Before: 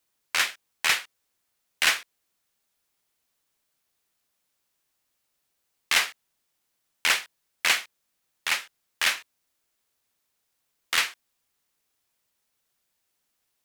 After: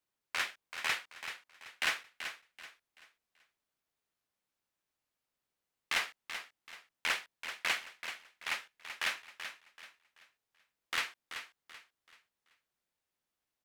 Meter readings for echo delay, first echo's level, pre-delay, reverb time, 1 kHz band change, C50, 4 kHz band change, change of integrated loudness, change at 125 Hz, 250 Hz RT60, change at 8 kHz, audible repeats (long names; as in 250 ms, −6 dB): 383 ms, −9.5 dB, no reverb audible, no reverb audible, −7.5 dB, no reverb audible, −11.0 dB, −11.5 dB, can't be measured, no reverb audible, −14.0 dB, 3